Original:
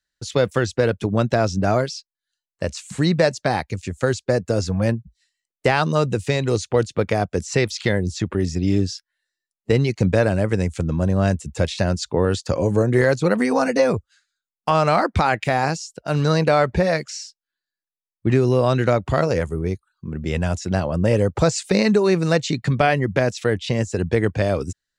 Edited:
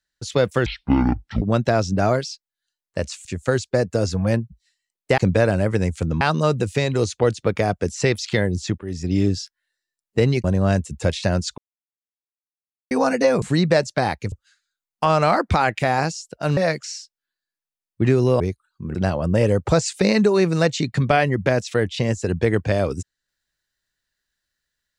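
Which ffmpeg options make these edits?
-filter_complex "[0:a]asplit=15[s0][s1][s2][s3][s4][s5][s6][s7][s8][s9][s10][s11][s12][s13][s14];[s0]atrim=end=0.664[s15];[s1]atrim=start=0.66:end=1.07,asetpts=PTS-STARTPTS,asetrate=23814,aresample=44100,atrim=end_sample=33483,asetpts=PTS-STARTPTS[s16];[s2]atrim=start=1.066:end=2.902[s17];[s3]atrim=start=3.798:end=5.732[s18];[s4]atrim=start=9.958:end=10.992[s19];[s5]atrim=start=5.728:end=8.3,asetpts=PTS-STARTPTS,afade=t=out:st=2.568:d=0.004:c=hsin:silence=0.125893[s20];[s6]atrim=start=8.3:end=9.962,asetpts=PTS-STARTPTS,afade=t=in:d=0.36:silence=0.125893[s21];[s7]atrim=start=10.988:end=12.13,asetpts=PTS-STARTPTS,afade=t=out:st=1.138:d=0.004:c=hsin[s22];[s8]atrim=start=12.13:end=13.46,asetpts=PTS-STARTPTS,volume=0[s23];[s9]atrim=start=13.46:end=13.972,asetpts=PTS-STARTPTS,afade=t=in:d=0.004:c=hsin[s24];[s10]atrim=start=2.898:end=3.802[s25];[s11]atrim=start=13.968:end=16.222[s26];[s12]atrim=start=16.818:end=18.652[s27];[s13]atrim=start=19.628:end=20.182[s28];[s14]atrim=start=20.648[s29];[s15][s16]acrossfade=d=0.004:c1=hsin:c2=hsin[s30];[s30][s17]acrossfade=d=0.004:c1=hsin:c2=hsin[s31];[s31][s18]acrossfade=d=0.004:c1=hsin:c2=hsin[s32];[s32][s19]acrossfade=d=0.004:c1=hsin:c2=hsin[s33];[s20][s21]concat=n=2:v=0:a=1[s34];[s33][s34]acrossfade=d=0.004:c1=hsin:c2=hsin[s35];[s22][s23][s24]concat=n=3:v=0:a=1[s36];[s35][s36]acrossfade=d=0.004:c1=hsin:c2=hsin[s37];[s37][s25]acrossfade=d=0.004:c1=hsin:c2=hsin[s38];[s38][s26]acrossfade=d=0.004:c1=hsin:c2=hsin[s39];[s39][s27]acrossfade=d=0.004:c1=hsin:c2=hsin[s40];[s40][s28]acrossfade=d=0.004:c1=hsin:c2=hsin[s41];[s41][s29]acrossfade=d=0.004:c1=hsin:c2=hsin"

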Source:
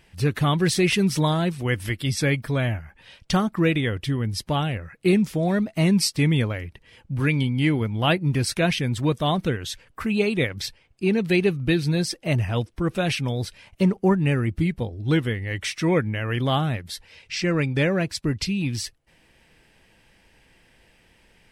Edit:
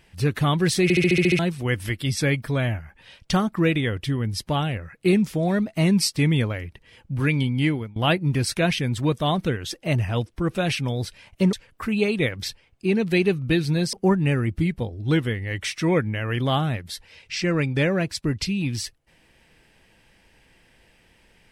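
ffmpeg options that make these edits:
-filter_complex "[0:a]asplit=13[s0][s1][s2][s3][s4][s5][s6][s7][s8][s9][s10][s11][s12];[s0]atrim=end=0.902[s13];[s1]atrim=start=0.828:end=0.902[s14];[s2]atrim=start=0.828:end=0.902[s15];[s3]atrim=start=0.828:end=0.902[s16];[s4]atrim=start=0.828:end=0.902[s17];[s5]atrim=start=0.828:end=0.902[s18];[s6]atrim=start=0.828:end=0.902[s19];[s7]atrim=start=0.828:end=0.902[s20];[s8]atrim=start=1.388:end=7.96,asetpts=PTS-STARTPTS,afade=t=out:st=6.252:d=0.32:silence=0.0668344[s21];[s9]atrim=start=7.96:end=9.712,asetpts=PTS-STARTPTS,afade=t=in:d=0.004:c=hsin:silence=0.0668344[s22];[s10]atrim=start=12.108:end=13.932[s23];[s11]atrim=start=9.708:end=12.112[s24];[s12]atrim=start=13.928[s25];[s13][s14]acrossfade=d=0.004:c1=hsin:c2=hsin[s26];[s26][s15]acrossfade=d=0.004:c1=hsin:c2=hsin[s27];[s27][s16]acrossfade=d=0.004:c1=hsin:c2=hsin[s28];[s28][s17]acrossfade=d=0.004:c1=hsin:c2=hsin[s29];[s29][s18]acrossfade=d=0.004:c1=hsin:c2=hsin[s30];[s30][s19]acrossfade=d=0.004:c1=hsin:c2=hsin[s31];[s31][s20]acrossfade=d=0.004:c1=hsin:c2=hsin[s32];[s21][s22]concat=n=2:v=0:a=1[s33];[s32][s33]acrossfade=d=0.004:c1=hsin:c2=hsin[s34];[s34][s23]acrossfade=d=0.004:c1=hsin:c2=hsin[s35];[s35][s24]acrossfade=d=0.004:c1=hsin:c2=hsin[s36];[s36][s25]acrossfade=d=0.004:c1=hsin:c2=hsin"

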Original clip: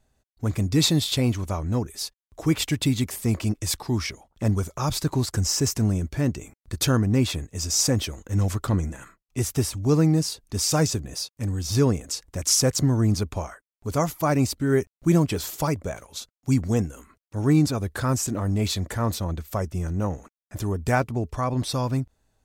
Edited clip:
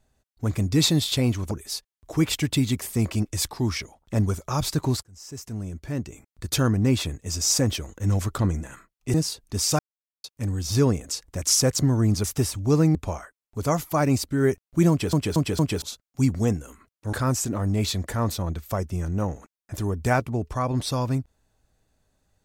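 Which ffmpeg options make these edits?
-filter_complex "[0:a]asplit=13[s0][s1][s2][s3][s4][s5][s6][s7][s8][s9][s10][s11][s12];[s0]atrim=end=1.512[s13];[s1]atrim=start=1.798:end=5.32,asetpts=PTS-STARTPTS,afade=t=out:st=3.518:d=0.004:c=hsin[s14];[s2]atrim=start=5.32:end=9.432,asetpts=PTS-STARTPTS,afade=t=in:d=1.75[s15];[s3]atrim=start=10.138:end=10.79,asetpts=PTS-STARTPTS,afade=t=out:st=0.648:d=0.004:c=hsin[s16];[s4]atrim=start=10.79:end=11.24,asetpts=PTS-STARTPTS,volume=0[s17];[s5]atrim=start=11.24:end=13.242,asetpts=PTS-STARTPTS,afade=t=in:d=0.004:c=hsin[s18];[s6]atrim=start=9.428:end=10.142[s19];[s7]atrim=start=13.238:end=15.422[s20];[s8]atrim=start=15.188:end=15.422[s21];[s9]atrim=start=15.188:end=15.422[s22];[s10]atrim=start=15.188:end=15.422[s23];[s11]atrim=start=16.108:end=17.422[s24];[s12]atrim=start=17.948[s25];[s14][s15]concat=n=2:v=0:a=1[s26];[s13][s26]acrossfade=d=0.004:c1=hsin:c2=hsin[s27];[s16][s17][s18]concat=n=3:v=0:a=1[s28];[s27][s28]acrossfade=d=0.004:c1=hsin:c2=hsin[s29];[s29][s19]acrossfade=d=0.004:c1=hsin:c2=hsin[s30];[s30][s20]acrossfade=d=0.004:c1=hsin:c2=hsin[s31];[s31][s21]acrossfade=d=0.004:c1=hsin:c2=hsin[s32];[s32][s22]acrossfade=d=0.004:c1=hsin:c2=hsin[s33];[s33][s23]acrossfade=d=0.004:c1=hsin:c2=hsin[s34];[s34][s24]acrossfade=d=0.004:c1=hsin:c2=hsin[s35];[s35][s25]acrossfade=d=0.004:c1=hsin:c2=hsin"

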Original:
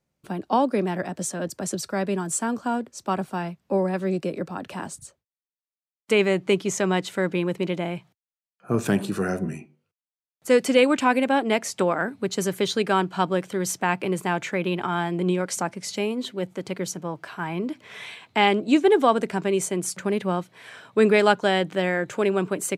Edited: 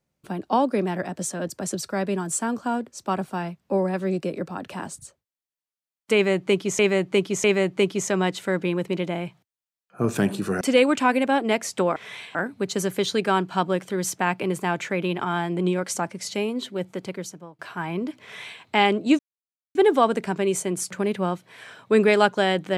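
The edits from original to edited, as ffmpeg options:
-filter_complex "[0:a]asplit=8[s0][s1][s2][s3][s4][s5][s6][s7];[s0]atrim=end=6.792[s8];[s1]atrim=start=6.138:end=6.792[s9];[s2]atrim=start=6.138:end=9.312[s10];[s3]atrim=start=10.618:end=11.972[s11];[s4]atrim=start=17.848:end=18.242[s12];[s5]atrim=start=11.968:end=17.21,asetpts=PTS-STARTPTS,afade=t=out:st=4.602:d=0.64:silence=0.0841395[s13];[s6]atrim=start=17.21:end=18.81,asetpts=PTS-STARTPTS,afade=t=in:d=0.004:c=hsin:silence=0.0841395,afade=t=out:st=1.596:d=0.004:c=hsin,apad=pad_dur=0.56[s14];[s7]atrim=start=18.81,asetpts=PTS-STARTPTS,afade=t=in:d=0.004:c=hsin[s15];[s8][s9]acrossfade=d=0.004:c1=hsin:c2=hsin[s16];[s16][s10]acrossfade=d=0.004:c1=hsin:c2=hsin[s17];[s17][s11]acrossfade=d=0.004:c1=hsin:c2=hsin[s18];[s18][s12]acrossfade=d=0.004:c1=hsin:c2=hsin[s19];[s13][s14][s15]concat=n=3:v=0:a=1[s20];[s19][s20]acrossfade=d=0.004:c1=hsin:c2=hsin"

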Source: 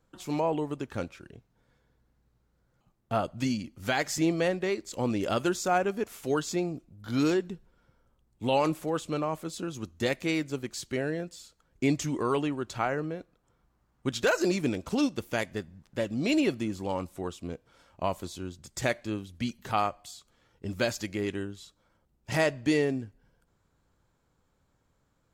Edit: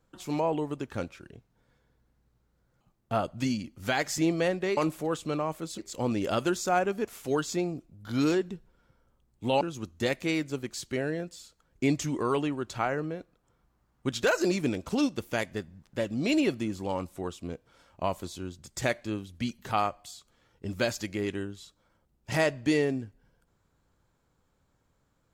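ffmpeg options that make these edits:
-filter_complex "[0:a]asplit=4[s0][s1][s2][s3];[s0]atrim=end=4.772[s4];[s1]atrim=start=8.598:end=9.612[s5];[s2]atrim=start=4.768:end=8.602[s6];[s3]atrim=start=9.608[s7];[s4][s5]acrossfade=d=0.004:c1=hsin:c2=hsin[s8];[s8][s6]acrossfade=d=0.004:c1=hsin:c2=hsin[s9];[s9][s7]acrossfade=d=0.004:c1=hsin:c2=hsin"

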